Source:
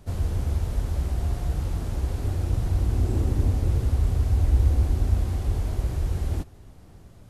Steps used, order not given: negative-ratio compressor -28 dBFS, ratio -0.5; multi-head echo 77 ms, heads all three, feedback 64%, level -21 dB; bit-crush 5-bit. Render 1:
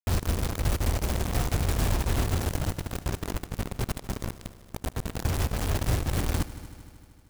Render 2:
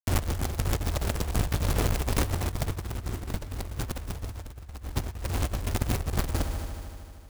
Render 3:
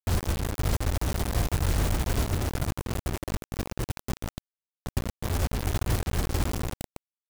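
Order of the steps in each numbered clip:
negative-ratio compressor > bit-crush > multi-head echo; bit-crush > multi-head echo > negative-ratio compressor; multi-head echo > negative-ratio compressor > bit-crush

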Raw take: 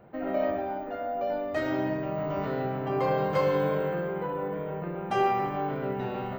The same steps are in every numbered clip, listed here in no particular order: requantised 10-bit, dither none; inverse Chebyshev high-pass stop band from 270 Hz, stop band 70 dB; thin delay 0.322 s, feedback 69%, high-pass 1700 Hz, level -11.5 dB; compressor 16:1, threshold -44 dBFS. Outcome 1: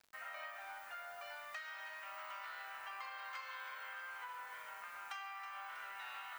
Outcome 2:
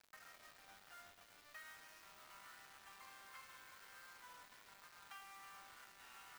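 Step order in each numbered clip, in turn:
inverse Chebyshev high-pass > requantised > compressor > thin delay; compressor > inverse Chebyshev high-pass > requantised > thin delay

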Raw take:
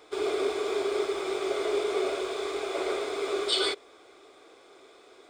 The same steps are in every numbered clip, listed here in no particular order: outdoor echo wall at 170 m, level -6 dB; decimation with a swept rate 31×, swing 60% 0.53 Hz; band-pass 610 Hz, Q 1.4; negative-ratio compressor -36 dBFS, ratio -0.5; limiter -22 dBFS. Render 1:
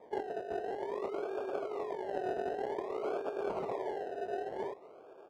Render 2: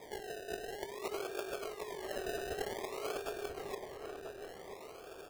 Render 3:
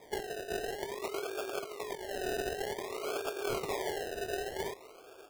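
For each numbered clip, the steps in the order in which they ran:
outdoor echo > decimation with a swept rate > limiter > band-pass > negative-ratio compressor; limiter > negative-ratio compressor > band-pass > decimation with a swept rate > outdoor echo; band-pass > limiter > outdoor echo > negative-ratio compressor > decimation with a swept rate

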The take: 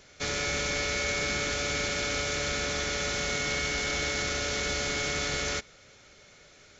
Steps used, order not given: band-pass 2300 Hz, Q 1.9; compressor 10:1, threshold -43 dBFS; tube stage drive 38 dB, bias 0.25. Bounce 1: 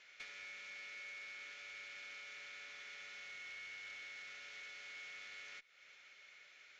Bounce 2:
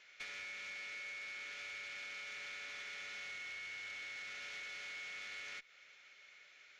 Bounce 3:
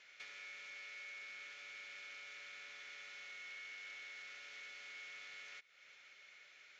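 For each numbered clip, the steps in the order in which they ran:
compressor > band-pass > tube stage; band-pass > compressor > tube stage; compressor > tube stage > band-pass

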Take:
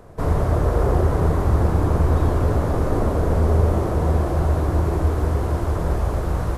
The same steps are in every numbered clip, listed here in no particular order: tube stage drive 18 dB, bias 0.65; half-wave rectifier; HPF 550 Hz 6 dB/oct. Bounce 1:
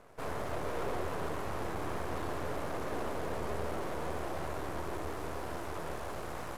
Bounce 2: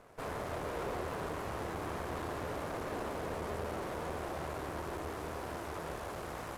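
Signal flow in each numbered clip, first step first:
HPF > tube stage > half-wave rectifier; HPF > half-wave rectifier > tube stage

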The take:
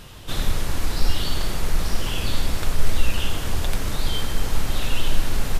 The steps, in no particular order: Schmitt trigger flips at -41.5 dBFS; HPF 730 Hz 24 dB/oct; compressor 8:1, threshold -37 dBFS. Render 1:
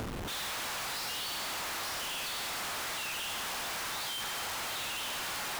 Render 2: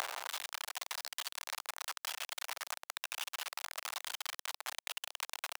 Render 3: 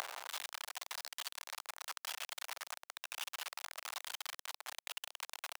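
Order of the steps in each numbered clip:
HPF > Schmitt trigger > compressor; Schmitt trigger > HPF > compressor; Schmitt trigger > compressor > HPF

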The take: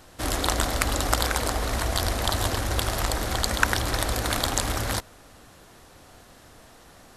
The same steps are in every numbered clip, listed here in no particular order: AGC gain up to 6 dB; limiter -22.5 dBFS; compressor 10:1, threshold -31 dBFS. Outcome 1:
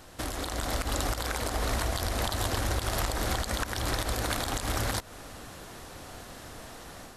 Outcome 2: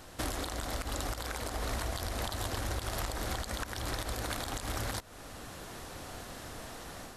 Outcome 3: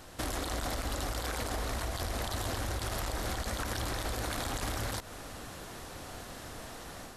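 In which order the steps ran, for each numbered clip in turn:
compressor > limiter > AGC; AGC > compressor > limiter; limiter > AGC > compressor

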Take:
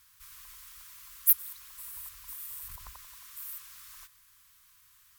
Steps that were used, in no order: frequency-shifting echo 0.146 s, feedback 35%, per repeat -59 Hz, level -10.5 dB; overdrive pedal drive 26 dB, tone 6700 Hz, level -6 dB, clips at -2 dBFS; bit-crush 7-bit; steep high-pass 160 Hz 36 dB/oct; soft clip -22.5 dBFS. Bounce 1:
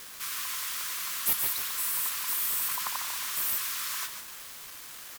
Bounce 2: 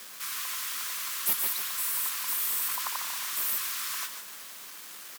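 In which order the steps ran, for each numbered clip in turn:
steep high-pass > overdrive pedal > frequency-shifting echo > soft clip > bit-crush; overdrive pedal > frequency-shifting echo > bit-crush > soft clip > steep high-pass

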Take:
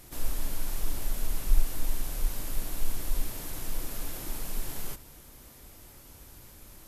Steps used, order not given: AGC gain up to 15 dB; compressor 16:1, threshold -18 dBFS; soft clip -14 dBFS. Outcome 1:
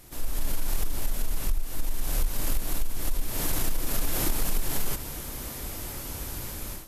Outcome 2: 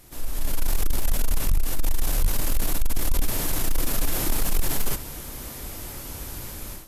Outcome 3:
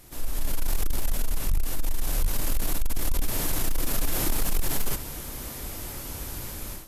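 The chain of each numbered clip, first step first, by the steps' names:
AGC > compressor > soft clip; compressor > AGC > soft clip; AGC > soft clip > compressor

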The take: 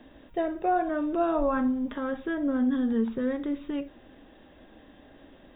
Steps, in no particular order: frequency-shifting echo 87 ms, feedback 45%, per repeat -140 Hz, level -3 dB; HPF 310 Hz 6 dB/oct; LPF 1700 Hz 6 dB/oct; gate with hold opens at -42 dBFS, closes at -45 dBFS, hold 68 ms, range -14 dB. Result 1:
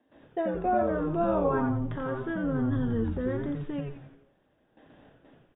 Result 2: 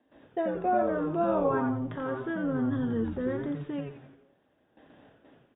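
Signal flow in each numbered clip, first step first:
LPF > gate with hold > HPF > frequency-shifting echo; LPF > gate with hold > frequency-shifting echo > HPF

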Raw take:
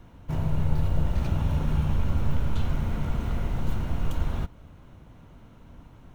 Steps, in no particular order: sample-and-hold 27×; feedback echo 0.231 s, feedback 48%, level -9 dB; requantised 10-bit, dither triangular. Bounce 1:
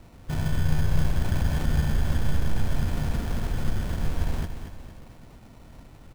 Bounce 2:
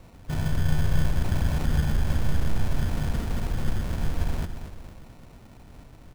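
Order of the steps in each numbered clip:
requantised > sample-and-hold > feedback echo; feedback echo > requantised > sample-and-hold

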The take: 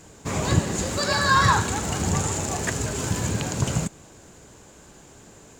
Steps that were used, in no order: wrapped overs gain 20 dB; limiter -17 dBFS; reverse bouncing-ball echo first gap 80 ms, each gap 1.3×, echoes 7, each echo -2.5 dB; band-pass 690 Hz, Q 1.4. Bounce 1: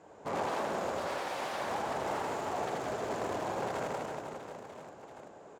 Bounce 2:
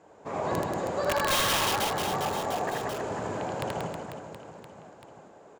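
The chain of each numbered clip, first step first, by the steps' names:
wrapped overs > reverse bouncing-ball echo > limiter > band-pass; band-pass > wrapped overs > reverse bouncing-ball echo > limiter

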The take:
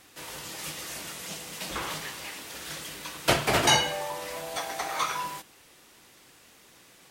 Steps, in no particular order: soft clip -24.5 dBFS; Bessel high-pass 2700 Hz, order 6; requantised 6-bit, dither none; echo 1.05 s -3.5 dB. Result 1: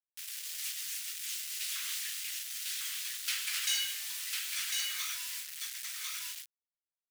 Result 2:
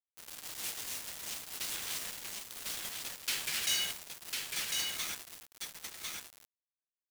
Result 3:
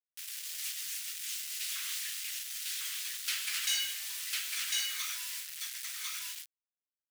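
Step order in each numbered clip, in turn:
soft clip > echo > requantised > Bessel high-pass; soft clip > Bessel high-pass > requantised > echo; echo > soft clip > requantised > Bessel high-pass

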